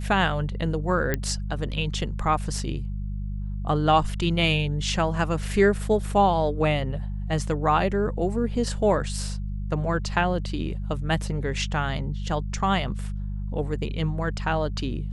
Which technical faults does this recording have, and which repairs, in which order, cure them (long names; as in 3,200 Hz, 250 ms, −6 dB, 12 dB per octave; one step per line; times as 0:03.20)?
mains hum 50 Hz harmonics 4 −30 dBFS
0:01.14: click −10 dBFS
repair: click removal
hum removal 50 Hz, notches 4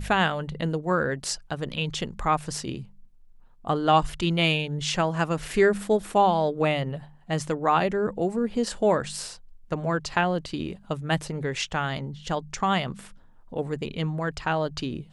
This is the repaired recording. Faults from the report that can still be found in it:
none of them is left